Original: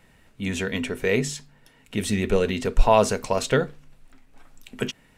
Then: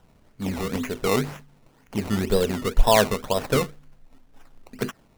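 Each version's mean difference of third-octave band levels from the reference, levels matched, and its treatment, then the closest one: 6.5 dB: treble shelf 4.3 kHz -10.5 dB; decimation with a swept rate 19×, swing 100% 2 Hz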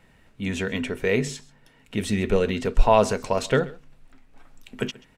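1.5 dB: treble shelf 5.8 kHz -6.5 dB; on a send: delay 133 ms -21.5 dB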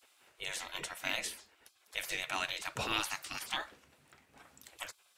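13.0 dB: spectral gate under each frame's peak -20 dB weak; bass shelf 470 Hz -4.5 dB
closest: second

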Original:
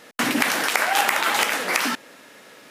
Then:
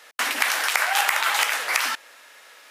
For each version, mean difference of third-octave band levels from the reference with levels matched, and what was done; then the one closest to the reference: 5.5 dB: high-pass 820 Hz 12 dB/octave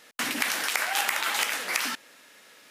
3.5 dB: tilt shelf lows -5 dB, about 1.2 kHz; trim -8 dB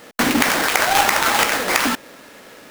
2.5 dB: square wave that keeps the level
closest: third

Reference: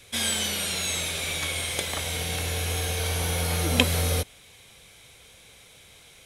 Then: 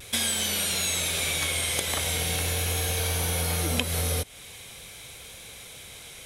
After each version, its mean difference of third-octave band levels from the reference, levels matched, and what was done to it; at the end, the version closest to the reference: 3.5 dB: treble shelf 9.9 kHz +7 dB; compression 5:1, threshold -31 dBFS, peak gain reduction 16 dB; vibrato 0.43 Hz 16 cents; trim +6.5 dB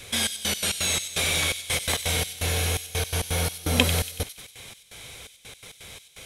6.0 dB: in parallel at -1 dB: compressor with a negative ratio -32 dBFS, ratio -0.5; on the sum: trance gate "xxx..x.x.xx..x" 168 bpm -24 dB; feedback echo behind a high-pass 94 ms, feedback 54%, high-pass 3.1 kHz, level -7.5 dB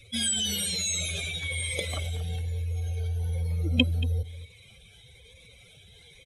10.5 dB: spectral contrast enhancement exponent 2.2; delay 230 ms -15.5 dB; Shepard-style phaser rising 1.1 Hz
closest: first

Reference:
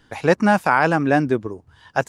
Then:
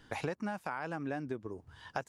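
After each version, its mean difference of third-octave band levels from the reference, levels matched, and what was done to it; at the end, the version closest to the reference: 4.5 dB: compression 16:1, threshold -30 dBFS, peak gain reduction 20.5 dB; trim -3.5 dB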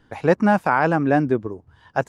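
2.5 dB: treble shelf 2.2 kHz -10 dB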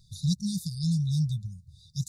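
19.0 dB: brick-wall FIR band-stop 190–3500 Hz; trim +1.5 dB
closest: second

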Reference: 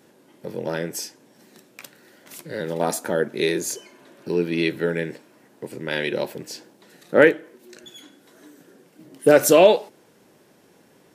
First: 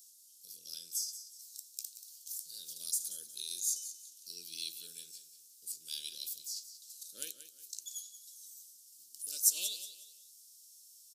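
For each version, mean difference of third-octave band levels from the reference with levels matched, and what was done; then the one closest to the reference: 19.0 dB: inverse Chebyshev high-pass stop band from 2.1 kHz, stop band 50 dB; in parallel at +2 dB: compressor with a negative ratio -47 dBFS, ratio -0.5; on the sum: feedback delay 182 ms, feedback 31%, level -12 dB; trim -3.5 dB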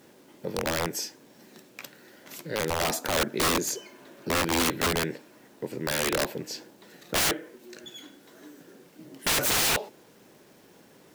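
11.0 dB: peaking EQ 9.7 kHz -10 dB 0.36 oct; bit crusher 10-bit; integer overflow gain 19 dB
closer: second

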